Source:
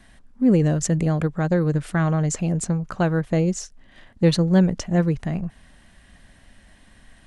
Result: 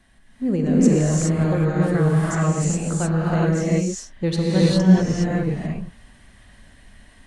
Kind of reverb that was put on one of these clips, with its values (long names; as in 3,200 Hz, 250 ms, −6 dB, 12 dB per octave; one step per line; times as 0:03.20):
reverb whose tail is shaped and stops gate 440 ms rising, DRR −7.5 dB
level −6 dB